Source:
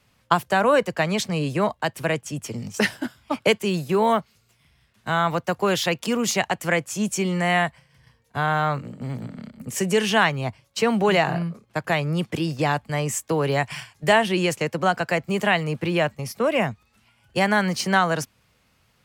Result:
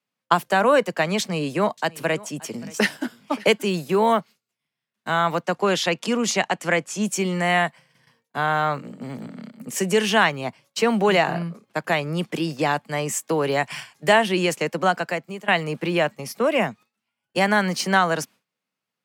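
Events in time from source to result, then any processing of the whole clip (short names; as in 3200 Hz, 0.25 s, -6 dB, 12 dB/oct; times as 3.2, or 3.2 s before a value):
1.2–3.77 echo 0.575 s -21.5 dB
5.42–7.02 LPF 8800 Hz
14.9–15.48 fade out, to -20 dB
whole clip: HPF 170 Hz 24 dB/oct; gate with hold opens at -48 dBFS; gain +1 dB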